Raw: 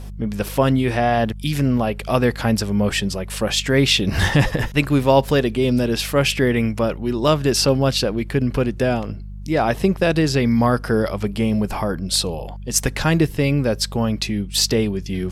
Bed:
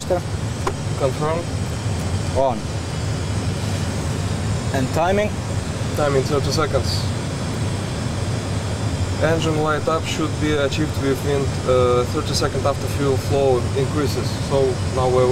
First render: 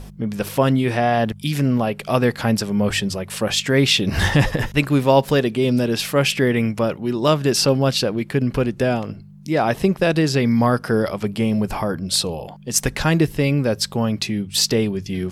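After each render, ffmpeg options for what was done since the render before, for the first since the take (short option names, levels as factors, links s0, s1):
-af "bandreject=f=50:t=h:w=4,bandreject=f=100:t=h:w=4"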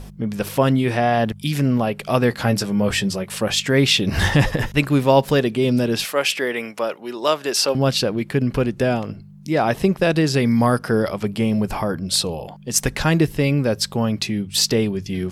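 -filter_complex "[0:a]asettb=1/sr,asplit=3[s0][s1][s2];[s0]atrim=end=2.304[s3];[s1]atrim=start=2.3:end=3.31,asetpts=PTS-STARTPTS,afade=t=in:d=0.004:c=qsin,afade=t=out:st=1.006:d=0.004:c=qsin,asplit=2[s4][s5];[s5]adelay=16,volume=0.398[s6];[s4][s6]amix=inputs=2:normalize=0,atrim=end_sample=44541[s7];[s2]atrim=start=3.306[s8];[s3][s7]acrossfade=d=0.004:c1=hsin:c2=qsin[s9];[s9][s8]acrossfade=d=0.004:c1=qsin:c2=hsin,asettb=1/sr,asplit=3[s10][s11][s12];[s10]atrim=end=6.044[s13];[s11]atrim=start=6.04:end=7.75,asetpts=PTS-STARTPTS,afade=t=in:d=0.004:c=qsin,afade=t=out:st=1.706:d=0.004:c=qsin,highpass=470[s14];[s12]atrim=start=7.746[s15];[s13][s14]acrossfade=d=0.004:c1=hsin:c2=qsin[s16];[s16][s15]acrossfade=d=0.004:c1=qsin:c2=hsin,asettb=1/sr,asplit=3[s17][s18][s19];[s17]atrim=end=10.344[s20];[s18]atrim=start=10.34:end=10.79,asetpts=PTS-STARTPTS,afade=t=in:d=0.004:c=qsin,afade=t=out:st=0.446:d=0.004:c=qsin,equalizer=f=9500:w=3:g=13.5[s21];[s19]atrim=start=10.786[s22];[s20][s21]acrossfade=d=0.004:c1=hsin:c2=qsin[s23];[s23][s22]acrossfade=d=0.004:c1=qsin:c2=hsin"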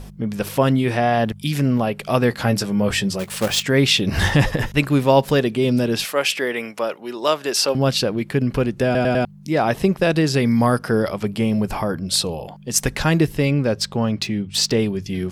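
-filter_complex "[0:a]asettb=1/sr,asplit=3[s0][s1][s2];[s0]atrim=end=3.194[s3];[s1]atrim=start=3.19:end=3.63,asetpts=PTS-STARTPTS,afade=t=in:d=0.004:c=qsin,afade=t=out:st=0.436:d=0.004:c=qsin,acrusher=bits=2:mode=log:mix=0:aa=0.000001[s4];[s2]atrim=start=3.626[s5];[s3][s4]acrossfade=d=0.004:c1=hsin:c2=qsin[s6];[s6][s5]acrossfade=d=0.004:c1=qsin:c2=hsin,asettb=1/sr,asplit=3[s7][s8][s9];[s7]atrim=end=13.454[s10];[s8]atrim=start=13.45:end=14.79,asetpts=PTS-STARTPTS,afade=t=in:d=0.004:c=qsin,afade=t=out:st=1.336:d=0.004:c=qsin,adynamicsmooth=sensitivity=5:basefreq=6200[s11];[s9]atrim=start=14.786[s12];[s10][s11]acrossfade=d=0.004:c1=hsin:c2=qsin[s13];[s13][s12]acrossfade=d=0.004:c1=qsin:c2=hsin,asplit=5[s14][s15][s16][s17][s18];[s14]atrim=end=8.952[s19];[s15]atrim=start=8.848:end=8.952[s20];[s16]atrim=start=8.848:end=8.952[s21];[s17]atrim=start=8.848:end=8.952[s22];[s18]atrim=start=9.248[s23];[s19][s20]acrossfade=d=0.004:c1=hsin:c2=hsin[s24];[s24][s21]acrossfade=d=0.004:c1=hsin:c2=hsin[s25];[s25][s22]acrossfade=d=0.004:c1=hsin:c2=hsin[s26];[s26][s23]acrossfade=d=0.004:c1=hsin:c2=hsin"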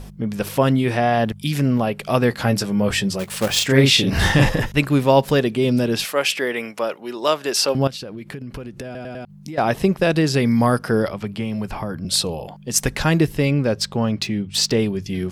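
-filter_complex "[0:a]asettb=1/sr,asplit=3[s0][s1][s2];[s0]atrim=end=3.524[s3];[s1]atrim=start=3.52:end=4.6,asetpts=PTS-STARTPTS,afade=t=in:d=0.004:c=qsin,afade=t=out:st=1.076:d=0.004:c=qsin,asplit=2[s4][s5];[s5]adelay=37,volume=0.75[s6];[s4][s6]amix=inputs=2:normalize=0,atrim=end_sample=47628[s7];[s2]atrim=start=4.596[s8];[s3][s7]acrossfade=d=0.004:c1=hsin:c2=qsin[s9];[s9][s8]acrossfade=d=0.004:c1=qsin:c2=hsin,asettb=1/sr,asplit=3[s10][s11][s12];[s10]atrim=end=7.874[s13];[s11]atrim=start=7.87:end=9.58,asetpts=PTS-STARTPTS,afade=t=in:d=0.004:c=qsin,afade=t=out:st=1.706:d=0.004:c=qsin,acompressor=threshold=0.0398:ratio=16:attack=3.2:release=140:knee=1:detection=peak[s14];[s12]atrim=start=9.576[s15];[s13][s14]acrossfade=d=0.004:c1=hsin:c2=qsin[s16];[s16][s15]acrossfade=d=0.004:c1=qsin:c2=hsin,asettb=1/sr,asplit=3[s17][s18][s19];[s17]atrim=end=11.074[s20];[s18]atrim=start=11.07:end=12.05,asetpts=PTS-STARTPTS,afade=t=in:d=0.004:c=qsin,afade=t=out:st=0.976:d=0.004:c=qsin,acrossover=split=230|790|4900[s21][s22][s23][s24];[s21]acompressor=threshold=0.0501:ratio=3[s25];[s22]acompressor=threshold=0.0224:ratio=3[s26];[s23]acompressor=threshold=0.02:ratio=3[s27];[s24]acompressor=threshold=0.00178:ratio=3[s28];[s25][s26][s27][s28]amix=inputs=4:normalize=0[s29];[s19]atrim=start=12.046[s30];[s20][s29]acrossfade=d=0.004:c1=hsin:c2=qsin[s31];[s31][s30]acrossfade=d=0.004:c1=qsin:c2=hsin"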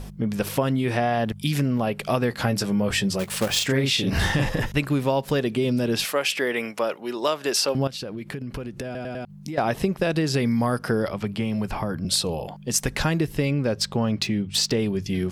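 -af "acompressor=threshold=0.112:ratio=6"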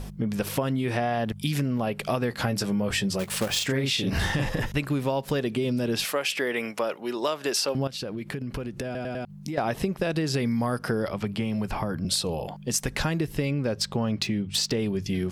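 -af "acompressor=threshold=0.0562:ratio=2"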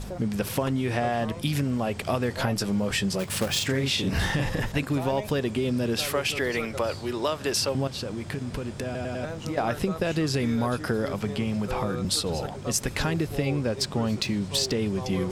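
-filter_complex "[1:a]volume=0.133[s0];[0:a][s0]amix=inputs=2:normalize=0"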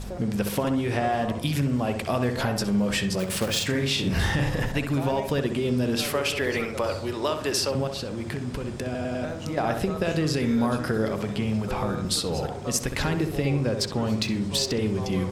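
-filter_complex "[0:a]asplit=2[s0][s1];[s1]adelay=64,lowpass=f=1800:p=1,volume=0.501,asplit=2[s2][s3];[s3]adelay=64,lowpass=f=1800:p=1,volume=0.51,asplit=2[s4][s5];[s5]adelay=64,lowpass=f=1800:p=1,volume=0.51,asplit=2[s6][s7];[s7]adelay=64,lowpass=f=1800:p=1,volume=0.51,asplit=2[s8][s9];[s9]adelay=64,lowpass=f=1800:p=1,volume=0.51,asplit=2[s10][s11];[s11]adelay=64,lowpass=f=1800:p=1,volume=0.51[s12];[s0][s2][s4][s6][s8][s10][s12]amix=inputs=7:normalize=0"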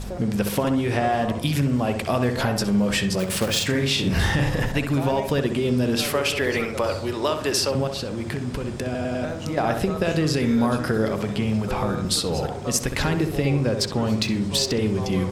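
-af "volume=1.41"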